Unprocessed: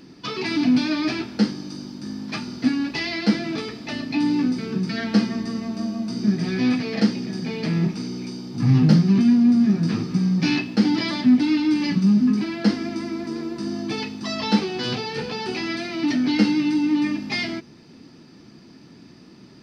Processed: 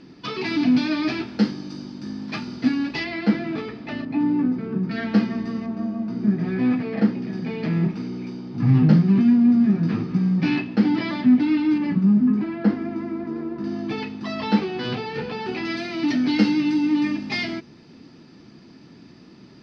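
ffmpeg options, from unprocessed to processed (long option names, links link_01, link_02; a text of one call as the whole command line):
ffmpeg -i in.wav -af "asetnsamples=nb_out_samples=441:pad=0,asendcmd='3.04 lowpass f 2400;4.05 lowpass f 1400;4.91 lowpass f 2900;5.66 lowpass f 1800;7.22 lowpass f 2600;11.78 lowpass f 1600;13.64 lowpass f 2900;15.65 lowpass f 5300',lowpass=4500" out.wav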